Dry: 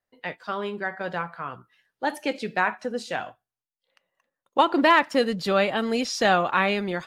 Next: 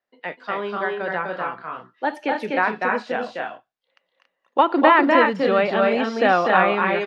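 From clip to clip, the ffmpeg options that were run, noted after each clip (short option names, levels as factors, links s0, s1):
-filter_complex "[0:a]acrossover=split=180 5200:gain=0.0891 1 0.112[s0][s1][s2];[s0][s1][s2]amix=inputs=3:normalize=0,acrossover=split=2800[s3][s4];[s4]acompressor=threshold=0.00398:ratio=4:attack=1:release=60[s5];[s3][s5]amix=inputs=2:normalize=0,aecho=1:1:247.8|279.9:0.708|0.501,volume=1.41"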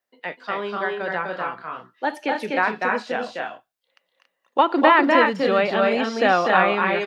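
-af "highshelf=f=5000:g=10,volume=0.891"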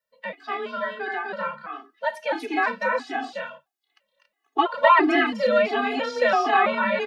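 -af "afreqshift=26,flanger=delay=4.2:depth=2.7:regen=-80:speed=0.56:shape=triangular,afftfilt=real='re*gt(sin(2*PI*1.5*pts/sr)*(1-2*mod(floor(b*sr/1024/220),2)),0)':imag='im*gt(sin(2*PI*1.5*pts/sr)*(1-2*mod(floor(b*sr/1024/220),2)),0)':win_size=1024:overlap=0.75,volume=1.88"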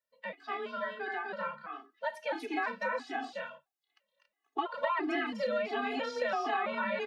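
-af "acompressor=threshold=0.0891:ratio=6,volume=0.422"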